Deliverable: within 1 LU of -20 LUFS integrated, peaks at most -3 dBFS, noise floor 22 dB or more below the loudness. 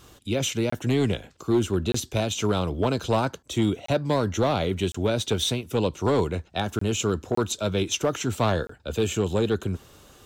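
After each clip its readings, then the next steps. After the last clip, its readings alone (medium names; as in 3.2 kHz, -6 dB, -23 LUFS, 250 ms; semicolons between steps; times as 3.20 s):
clipped samples 1.1%; clipping level -15.0 dBFS; dropouts 7; longest dropout 24 ms; loudness -26.0 LUFS; peak level -15.0 dBFS; loudness target -20.0 LUFS
-> clip repair -15 dBFS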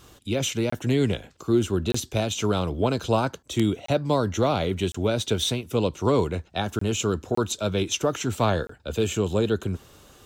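clipped samples 0.0%; dropouts 7; longest dropout 24 ms
-> interpolate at 0.70/1.92/3.86/4.92/6.79/7.35/8.67 s, 24 ms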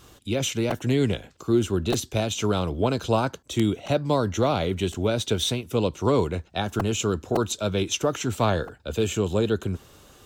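dropouts 0; loudness -25.5 LUFS; peak level -6.5 dBFS; loudness target -20.0 LUFS
-> trim +5.5 dB; peak limiter -3 dBFS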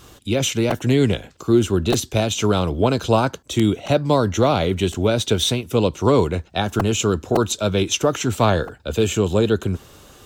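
loudness -20.0 LUFS; peak level -3.0 dBFS; noise floor -48 dBFS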